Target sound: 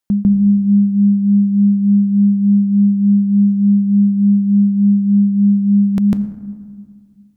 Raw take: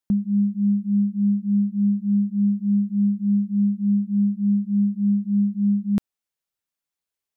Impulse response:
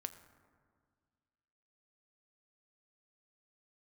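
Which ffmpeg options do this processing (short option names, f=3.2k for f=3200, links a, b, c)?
-filter_complex "[0:a]asplit=2[a][b];[1:a]atrim=start_sample=2205,lowshelf=f=420:g=5,adelay=149[c];[b][c]afir=irnorm=-1:irlink=0,volume=3.5dB[d];[a][d]amix=inputs=2:normalize=0,volume=5dB"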